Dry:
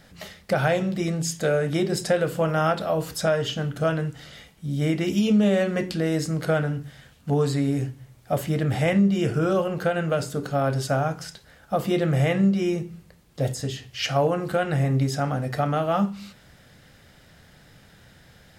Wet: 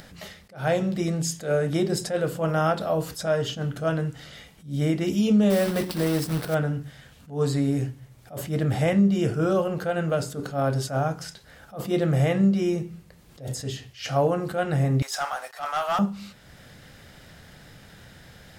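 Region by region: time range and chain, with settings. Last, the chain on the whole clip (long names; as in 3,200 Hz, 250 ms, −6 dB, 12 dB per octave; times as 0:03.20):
0:05.50–0:06.55: one scale factor per block 3 bits + parametric band 6,800 Hz −10 dB 0.21 octaves
0:15.02–0:15.99: high-pass filter 820 Hz 24 dB per octave + leveller curve on the samples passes 2
whole clip: dynamic equaliser 2,300 Hz, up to −4 dB, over −40 dBFS, Q 1.1; upward compression, threshold −41 dBFS; level that may rise only so fast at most 180 dB per second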